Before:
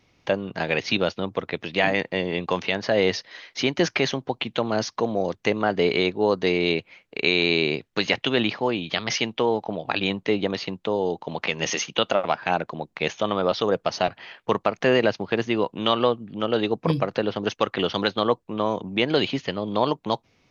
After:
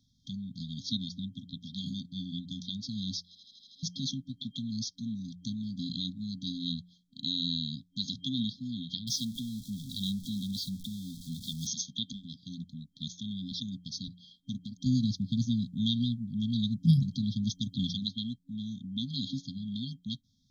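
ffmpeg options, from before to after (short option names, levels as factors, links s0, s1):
-filter_complex "[0:a]asettb=1/sr,asplit=3[s0][s1][s2];[s0]atrim=end=9.074[s3];[s1]atrim=start=9.07:end=11.67,asetpts=PTS-STARTPTS,afade=t=in:d=0.004:c=qsin,afade=t=out:st=2.596:d=0.004:c=qsin,aeval=exprs='val(0)+0.5*0.0251*sgn(val(0))':c=same[s4];[s2]atrim=start=11.666[s5];[s3][s4]acrossfade=d=0.004:c1=hsin:c2=qsin[s6];[s6][s5]acrossfade=d=0.004:c1=qsin:c2=hsin,asettb=1/sr,asplit=3[s7][s8][s9];[s7]atrim=end=14.864[s10];[s8]atrim=start=14.86:end=17.94,asetpts=PTS-STARTPTS,afade=t=in:d=0.004:c=qsin,afade=t=out:st=3.076:d=0.004:c=qsin,bass=f=250:g=10,treble=f=4000:g=7[s11];[s9]atrim=start=17.936[s12];[s10][s11]acrossfade=d=0.004:c1=hsin:c2=qsin[s13];[s13][s12]acrossfade=d=0.004:c1=qsin:c2=hsin,asplit=8[s14][s15][s16][s17][s18][s19][s20][s21];[s14]atrim=end=3.352[s22];[s15]atrim=start=3.268:end=3.352[s23];[s16]atrim=start=3.268:end=3.352[s24];[s17]atrim=start=3.268:end=3.352[s25];[s18]atrim=start=3.268:end=3.352[s26];[s19]atrim=start=3.268:end=3.352[s27];[s20]atrim=start=3.268:end=3.352[s28];[s21]atrim=start=3.828[s29];[s22][s23]acrossfade=d=0.004:c1=hsin:c2=hsin[s30];[s30][s24]acrossfade=d=0.004:c1=hsin:c2=hsin[s31];[s31][s25]acrossfade=d=0.004:c1=hsin:c2=hsin[s32];[s32][s26]acrossfade=d=0.004:c1=hsin:c2=hsin[s33];[s33][s27]acrossfade=d=0.004:c1=hsin:c2=hsin[s34];[s34][s28]acrossfade=d=0.004:c1=hsin:c2=hsin[s35];[s35][s29]acrossfade=d=0.004:c1=hsin:c2=hsin,bandreject=f=88.72:t=h:w=4,bandreject=f=177.44:t=h:w=4,afftfilt=real='re*(1-between(b*sr/4096,270,3200))':imag='im*(1-between(b*sr/4096,270,3200))':win_size=4096:overlap=0.75,volume=0.562"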